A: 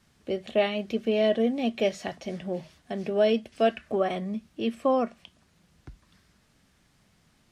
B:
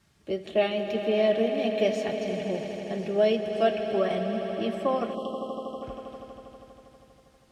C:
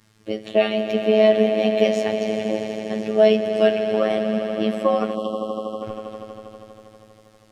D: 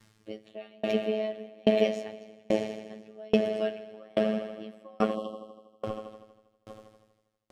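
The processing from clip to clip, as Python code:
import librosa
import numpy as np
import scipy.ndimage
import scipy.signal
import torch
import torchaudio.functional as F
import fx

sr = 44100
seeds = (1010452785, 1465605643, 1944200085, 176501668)

y1 = fx.notch_comb(x, sr, f0_hz=250.0)
y1 = fx.echo_swell(y1, sr, ms=80, loudest=5, wet_db=-13.0)
y1 = fx.spec_erase(y1, sr, start_s=5.15, length_s=0.67, low_hz=1300.0, high_hz=2700.0)
y2 = fx.robotise(y1, sr, hz=108.0)
y2 = y2 * librosa.db_to_amplitude(8.5)
y3 = fx.tremolo_decay(y2, sr, direction='decaying', hz=1.2, depth_db=35)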